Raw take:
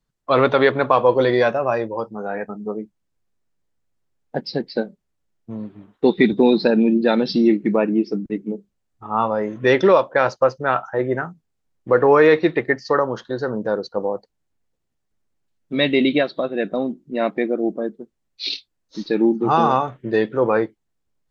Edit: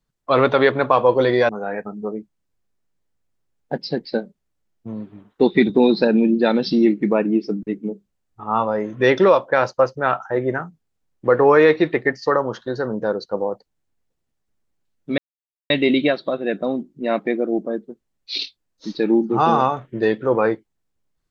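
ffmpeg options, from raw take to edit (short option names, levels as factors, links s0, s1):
-filter_complex "[0:a]asplit=3[s0][s1][s2];[s0]atrim=end=1.492[s3];[s1]atrim=start=2.118:end=15.81,asetpts=PTS-STARTPTS,afade=t=out:st=13.688:d=0.004:c=hsin,apad=pad_dur=0.52[s4];[s2]atrim=start=15.81,asetpts=PTS-STARTPTS,afade=t=in:d=0.004:c=hsin[s5];[s4][s5]concat=n=2:v=0:a=1[s6];[s3][s6]acrossfade=d=0.004:c1=hsin:c2=hsin"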